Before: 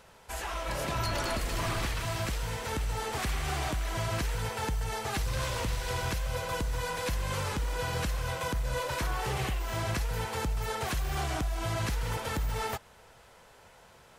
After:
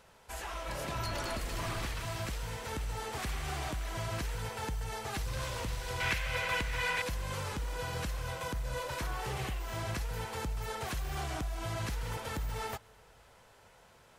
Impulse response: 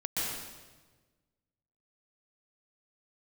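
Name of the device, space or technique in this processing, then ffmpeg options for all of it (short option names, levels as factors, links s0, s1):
compressed reverb return: -filter_complex "[0:a]asettb=1/sr,asplit=3[s0][s1][s2];[s0]atrim=end=6.004[s3];[s1]atrim=start=6:end=7.02,asetpts=PTS-STARTPTS,afade=t=in:d=0.004:c=qsin,afade=t=out:st=1.016:d=0.004:c=qsin,equalizer=f=2200:w=0.97:g=15[s4];[s2]atrim=start=7.016[s5];[s3][s4]acrossfade=d=0.004:c1=hsin:c2=qsin[s6];[s6][s5]acrossfade=d=0.004:c1=qsin:c2=hsin,asplit=2[s7][s8];[1:a]atrim=start_sample=2205[s9];[s8][s9]afir=irnorm=-1:irlink=0,acompressor=threshold=0.0141:ratio=6,volume=0.112[s10];[s7][s10]amix=inputs=2:normalize=0,volume=0.562"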